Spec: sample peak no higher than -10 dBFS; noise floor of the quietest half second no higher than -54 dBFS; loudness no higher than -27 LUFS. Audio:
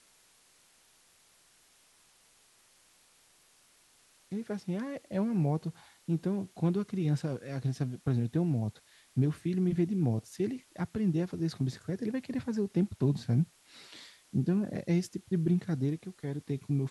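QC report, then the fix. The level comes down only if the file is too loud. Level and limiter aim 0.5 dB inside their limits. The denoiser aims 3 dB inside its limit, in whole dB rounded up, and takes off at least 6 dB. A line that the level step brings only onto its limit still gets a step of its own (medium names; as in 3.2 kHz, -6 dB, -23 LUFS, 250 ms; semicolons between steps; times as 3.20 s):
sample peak -16.5 dBFS: pass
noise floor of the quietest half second -65 dBFS: pass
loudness -32.5 LUFS: pass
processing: none needed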